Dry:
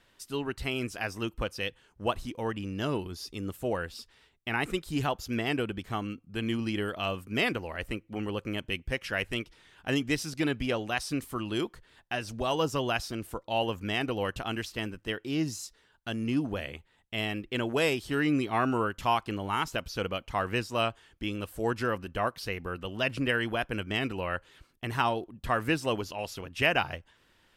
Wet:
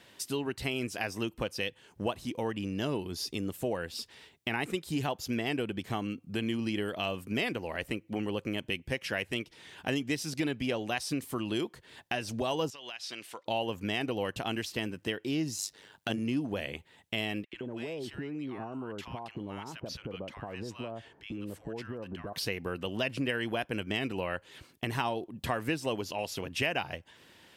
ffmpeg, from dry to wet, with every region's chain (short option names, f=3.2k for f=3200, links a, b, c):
-filter_complex "[0:a]asettb=1/sr,asplit=3[a][b][c];[a]atrim=end=12.704[d];[b]atrim=start=12.7:end=13.46,asetpts=PTS-STARTPTS,afade=t=in:d=0.004:c=qsin,afade=t=out:st=0.756:d=0.004:c=qsin,bandpass=f=3k:t=q:w=0.92,acompressor=threshold=-43dB:ratio=12:attack=3.2:release=140:knee=1:detection=peak[e];[c]atrim=start=13.456[f];[d][e]acrossfade=d=0.004:c1=hsin:c2=qsin[g];[g][f]acrossfade=d=0.004:c1=qsin:c2=hsin,asettb=1/sr,asplit=3[h][i][j];[h]atrim=end=15.584[k];[i]atrim=start=15.58:end=16.19,asetpts=PTS-STARTPTS,afade=t=in:d=0.004:c=qsin,afade=t=out:st=0.606:d=0.004:c=qsin,highpass=58,acontrast=56,tremolo=f=100:d=0.788[l];[j]atrim=start=16.186[m];[k][l]acrossfade=d=0.004:c1=hsin:c2=qsin[n];[n][m]acrossfade=d=0.004:c1=qsin:c2=hsin,asettb=1/sr,asplit=3[o][p][q];[o]atrim=end=17.444[r];[p]atrim=start=17.44:end=22.33,asetpts=PTS-STARTPTS,afade=t=in:d=0.004:c=qsin,afade=t=out:st=4.886:d=0.004:c=qsin,lowpass=f=2k:p=1,acompressor=threshold=-41dB:ratio=16:attack=3.2:release=140:knee=1:detection=peak,acrossover=split=1100[s][t];[s]adelay=90[u];[u][t]amix=inputs=2:normalize=0,atrim=end_sample=215649[v];[q]atrim=start=22.326[w];[r][v]acrossfade=d=0.004:c1=hsin:c2=qsin[x];[x][w]acrossfade=d=0.004:c1=qsin:c2=hsin,highpass=110,equalizer=f=1.3k:t=o:w=0.58:g=-6,acompressor=threshold=-43dB:ratio=2.5,volume=9dB"